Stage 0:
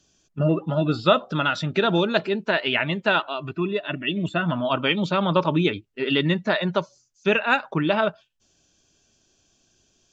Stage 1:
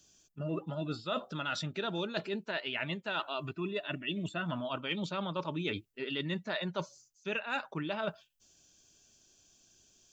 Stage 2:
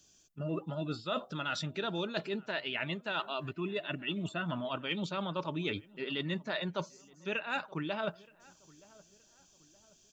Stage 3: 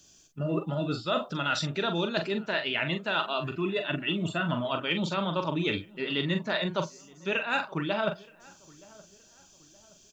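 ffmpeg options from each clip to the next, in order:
-af "aemphasis=mode=production:type=50kf,areverse,acompressor=threshold=0.0447:ratio=6,areverse,volume=0.531"
-filter_complex "[0:a]asplit=2[s0][s1];[s1]adelay=922,lowpass=f=1600:p=1,volume=0.0708,asplit=2[s2][s3];[s3]adelay=922,lowpass=f=1600:p=1,volume=0.45,asplit=2[s4][s5];[s5]adelay=922,lowpass=f=1600:p=1,volume=0.45[s6];[s0][s2][s4][s6]amix=inputs=4:normalize=0"
-filter_complex "[0:a]asplit=2[s0][s1];[s1]adelay=42,volume=0.422[s2];[s0][s2]amix=inputs=2:normalize=0,volume=2"

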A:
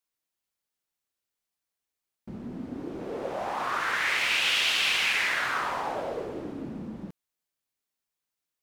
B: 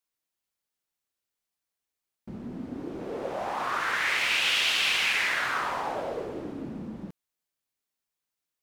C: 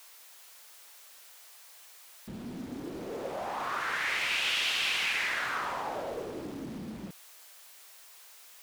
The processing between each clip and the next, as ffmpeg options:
-af anull
-filter_complex "[0:a]aeval=exprs='val(0)+0.5*0.00891*sgn(val(0))':c=same,acrossover=split=450|2800[s0][s1][s2];[s0]acrusher=bits=7:mix=0:aa=0.000001[s3];[s3][s1][s2]amix=inputs=3:normalize=0,volume=0.562"

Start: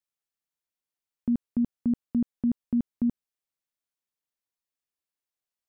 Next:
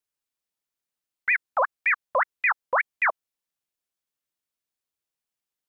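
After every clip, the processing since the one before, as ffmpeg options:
-filter_complex "[0:a]acrossover=split=190|430[s0][s1][s2];[s0]aeval=exprs='sgn(val(0))*max(abs(val(0))-0.00178,0)':c=same[s3];[s3][s1][s2]amix=inputs=3:normalize=0,aeval=exprs='val(0)*sin(2*PI*1500*n/s+1500*0.5/5.3*sin(2*PI*5.3*n/s))':c=same,volume=1.88"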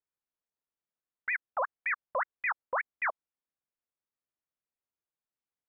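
-af "lowpass=1700,alimiter=limit=0.119:level=0:latency=1,volume=0.631"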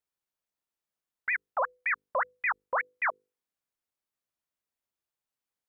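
-af "bandreject=f=50:t=h:w=6,bandreject=f=100:t=h:w=6,bandreject=f=150:t=h:w=6,bandreject=f=200:t=h:w=6,bandreject=f=250:t=h:w=6,bandreject=f=300:t=h:w=6,bandreject=f=350:t=h:w=6,bandreject=f=400:t=h:w=6,bandreject=f=450:t=h:w=6,bandreject=f=500:t=h:w=6,volume=1.33"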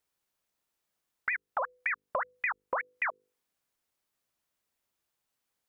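-af "acompressor=threshold=0.0141:ratio=6,volume=2.37"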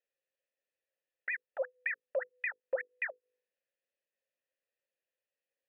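-filter_complex "[0:a]asplit=3[s0][s1][s2];[s0]bandpass=f=530:t=q:w=8,volume=1[s3];[s1]bandpass=f=1840:t=q:w=8,volume=0.501[s4];[s2]bandpass=f=2480:t=q:w=8,volume=0.355[s5];[s3][s4][s5]amix=inputs=3:normalize=0,bandreject=f=50:t=h:w=6,bandreject=f=100:t=h:w=6,bandreject=f=150:t=h:w=6,bandreject=f=200:t=h:w=6,bandreject=f=250:t=h:w=6,bandreject=f=300:t=h:w=6,bandreject=f=350:t=h:w=6,bandreject=f=400:t=h:w=6,bandreject=f=450:t=h:w=6,bandreject=f=500:t=h:w=6,volume=1.88"

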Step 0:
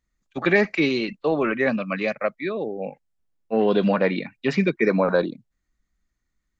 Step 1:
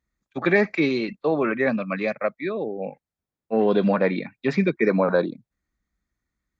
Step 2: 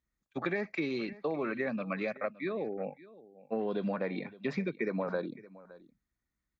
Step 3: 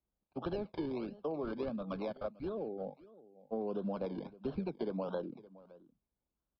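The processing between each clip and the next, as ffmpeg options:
-af "highpass=48,highshelf=f=4200:g=-7,bandreject=f=2900:w=7.8"
-af "acompressor=threshold=0.0631:ratio=5,aecho=1:1:566:0.106,volume=0.501"
-filter_complex "[0:a]acrossover=split=230|920|1200[s0][s1][s2][s3];[s3]acrusher=samples=26:mix=1:aa=0.000001:lfo=1:lforange=15.6:lforate=1.5[s4];[s0][s1][s2][s4]amix=inputs=4:normalize=0,aresample=11025,aresample=44100,asuperstop=centerf=1900:order=4:qfactor=4.6,volume=0.631"

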